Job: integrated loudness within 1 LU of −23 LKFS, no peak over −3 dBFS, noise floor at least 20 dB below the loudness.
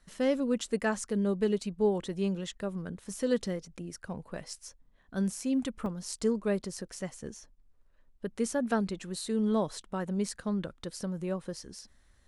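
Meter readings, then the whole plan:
number of dropouts 1; longest dropout 1.9 ms; integrated loudness −33.0 LKFS; sample peak −15.5 dBFS; target loudness −23.0 LKFS
→ repair the gap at 0:05.86, 1.9 ms
level +10 dB

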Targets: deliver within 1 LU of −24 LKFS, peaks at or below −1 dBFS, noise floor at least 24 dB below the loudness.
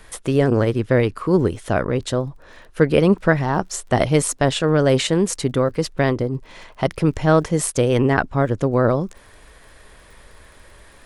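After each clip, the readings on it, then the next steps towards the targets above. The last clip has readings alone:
crackle rate 22 per second; integrated loudness −19.5 LKFS; sample peak −2.5 dBFS; target loudness −24.0 LKFS
→ click removal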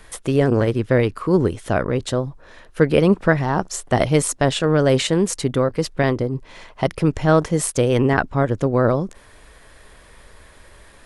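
crackle rate 0 per second; integrated loudness −19.5 LKFS; sample peak −2.5 dBFS; target loudness −24.0 LKFS
→ level −4.5 dB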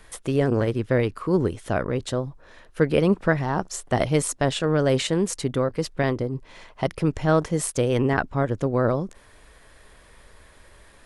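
integrated loudness −24.0 LKFS; sample peak −7.0 dBFS; background noise floor −52 dBFS

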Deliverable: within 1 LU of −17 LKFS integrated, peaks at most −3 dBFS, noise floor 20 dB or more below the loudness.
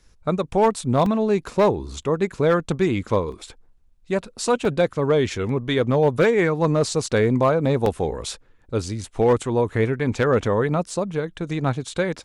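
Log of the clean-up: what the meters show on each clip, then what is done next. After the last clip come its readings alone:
share of clipped samples 0.4%; peaks flattened at −10.5 dBFS; number of dropouts 5; longest dropout 2.6 ms; integrated loudness −22.0 LKFS; sample peak −10.5 dBFS; target loudness −17.0 LKFS
→ clipped peaks rebuilt −10.5 dBFS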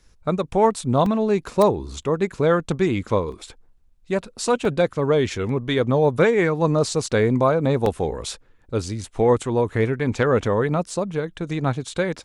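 share of clipped samples 0.0%; number of dropouts 5; longest dropout 2.6 ms
→ repair the gap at 0:01.06/0:03.32/0:04.65/0:07.86/0:10.90, 2.6 ms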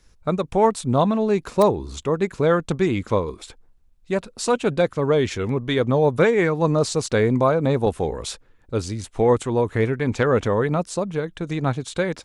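number of dropouts 0; integrated loudness −21.5 LKFS; sample peak −4.5 dBFS; target loudness −17.0 LKFS
→ level +4.5 dB
brickwall limiter −3 dBFS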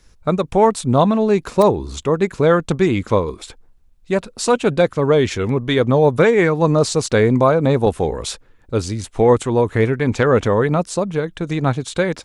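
integrated loudness −17.0 LKFS; sample peak −3.0 dBFS; background noise floor −51 dBFS

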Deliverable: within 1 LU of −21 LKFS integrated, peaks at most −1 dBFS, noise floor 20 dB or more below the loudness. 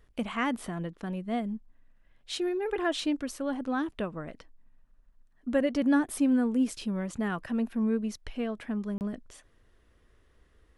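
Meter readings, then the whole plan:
number of dropouts 1; longest dropout 29 ms; integrated loudness −30.5 LKFS; sample peak −14.5 dBFS; target loudness −21.0 LKFS
→ repair the gap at 0:08.98, 29 ms
level +9.5 dB

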